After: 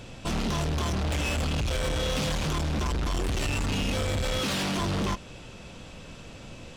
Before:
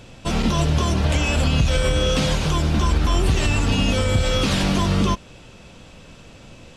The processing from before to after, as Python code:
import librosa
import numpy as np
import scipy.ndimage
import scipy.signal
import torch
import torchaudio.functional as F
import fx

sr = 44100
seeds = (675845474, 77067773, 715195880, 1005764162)

y = fx.highpass(x, sr, hz=210.0, slope=6, at=(4.39, 4.8))
y = 10.0 ** (-25.5 / 20.0) * np.tanh(y / 10.0 ** (-25.5 / 20.0))